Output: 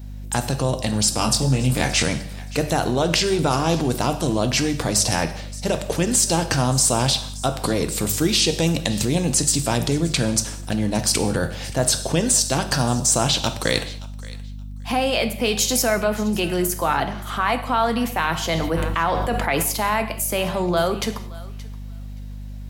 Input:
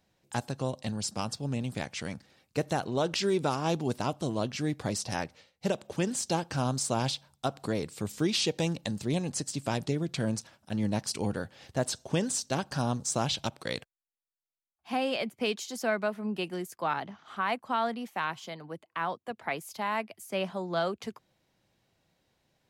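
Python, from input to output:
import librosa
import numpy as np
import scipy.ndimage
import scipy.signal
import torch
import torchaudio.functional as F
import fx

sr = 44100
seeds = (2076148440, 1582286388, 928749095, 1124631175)

p1 = fx.over_compress(x, sr, threshold_db=-37.0, ratio=-1.0)
p2 = x + F.gain(torch.from_numpy(p1), 2.0).numpy()
p3 = fx.high_shelf(p2, sr, hz=9600.0, db=11.5)
p4 = fx.hum_notches(p3, sr, base_hz=50, count=4)
p5 = fx.add_hum(p4, sr, base_hz=50, snr_db=13)
p6 = fx.doubler(p5, sr, ms=23.0, db=-3.5, at=(1.19, 2.03))
p7 = p6 + fx.echo_thinned(p6, sr, ms=574, feedback_pct=19, hz=730.0, wet_db=-19.0, dry=0)
p8 = fx.rev_gated(p7, sr, seeds[0], gate_ms=240, shape='falling', drr_db=8.0)
p9 = fx.sustainer(p8, sr, db_per_s=22.0, at=(18.35, 19.63))
y = F.gain(torch.from_numpy(p9), 5.5).numpy()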